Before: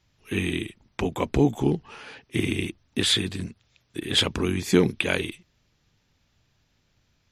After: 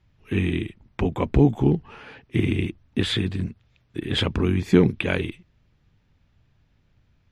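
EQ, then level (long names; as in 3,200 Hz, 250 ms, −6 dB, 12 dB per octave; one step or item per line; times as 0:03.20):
bass and treble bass +1 dB, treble −13 dB
low-shelf EQ 190 Hz +7.5 dB
0.0 dB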